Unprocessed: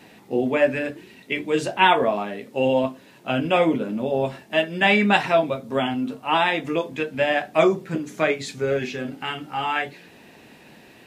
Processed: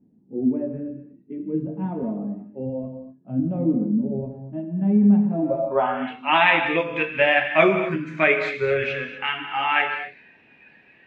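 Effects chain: spectral noise reduction 12 dB; gated-style reverb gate 270 ms flat, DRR 6 dB; low-pass sweep 240 Hz -> 2.4 kHz, 5.31–6.12 s

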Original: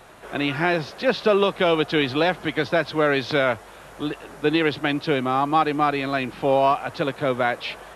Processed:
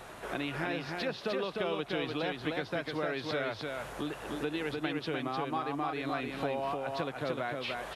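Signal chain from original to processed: compression 4:1, threshold -35 dBFS, peak gain reduction 17.5 dB; delay 302 ms -3.5 dB

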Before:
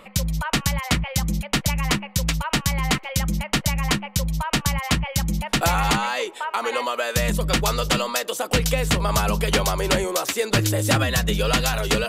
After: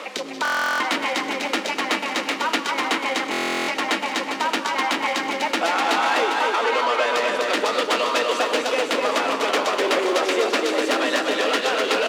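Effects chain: word length cut 8-bit, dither triangular; low-pass 3.7 kHz 12 dB/octave; saturation -22 dBFS, distortion -11 dB; steep high-pass 260 Hz 48 dB/octave; bouncing-ball echo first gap 250 ms, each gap 0.6×, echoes 5; on a send at -10.5 dB: reverberation RT60 2.5 s, pre-delay 5 ms; on the sum: buffer glitch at 0.43/3.31 s, samples 1024, times 15; three bands compressed up and down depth 40%; trim +5.5 dB

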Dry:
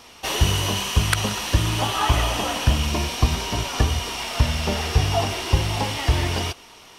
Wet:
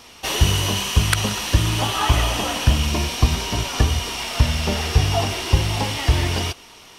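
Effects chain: peaking EQ 810 Hz -2.5 dB 2.2 oct; trim +2.5 dB

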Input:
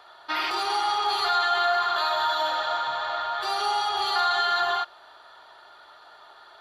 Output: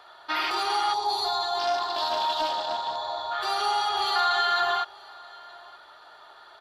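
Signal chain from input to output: on a send: delay 929 ms -24 dB; 0.94–3.32 s: on the sum: time-frequency box 1.1–3.4 kHz -14 dB; 1.59–2.96 s: loudspeaker Doppler distortion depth 0.16 ms

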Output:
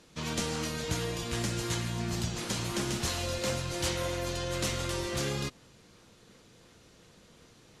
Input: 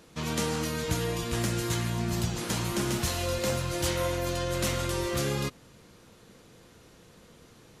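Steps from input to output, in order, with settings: treble shelf 2.7 kHz +10 dB; in parallel at -10.5 dB: decimation with a swept rate 23×, swing 160% 2.8 Hz; on the sum: distance through air 50 m; trim -6 dB

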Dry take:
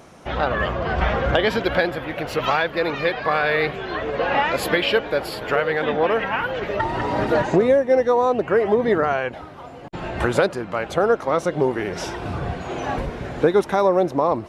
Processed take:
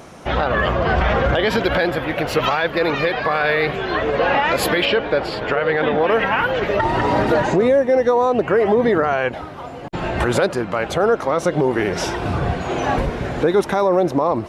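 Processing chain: peak limiter -14 dBFS, peak gain reduction 9.5 dB; 4.85–5.98 s: distance through air 100 m; trim +6 dB

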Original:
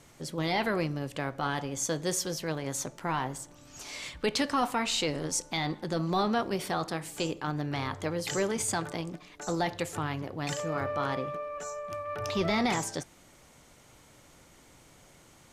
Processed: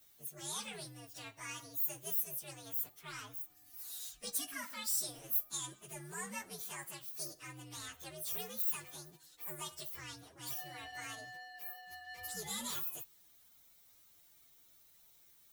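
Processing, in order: frequency axis rescaled in octaves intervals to 126%; pre-emphasis filter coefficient 0.9; trim +1 dB

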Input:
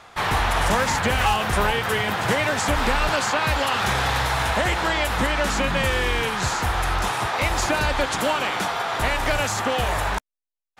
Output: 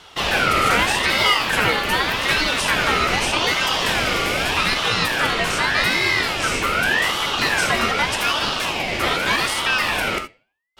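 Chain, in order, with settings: flange 0.24 Hz, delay 0.4 ms, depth 9.5 ms, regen +86%; gated-style reverb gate 100 ms flat, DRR 6 dB; ring modulator with a swept carrier 1.7 kHz, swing 25%, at 0.83 Hz; trim +8.5 dB

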